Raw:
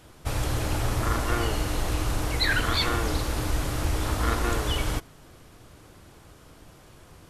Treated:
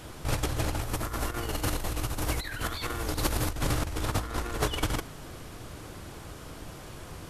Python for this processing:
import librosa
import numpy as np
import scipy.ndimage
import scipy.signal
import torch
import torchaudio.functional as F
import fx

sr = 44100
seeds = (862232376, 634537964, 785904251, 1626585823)

y = fx.high_shelf(x, sr, hz=12000.0, db=11.0, at=(0.81, 3.51))
y = fx.over_compress(y, sr, threshold_db=-30.0, ratio=-0.5)
y = y * librosa.db_to_amplitude(1.5)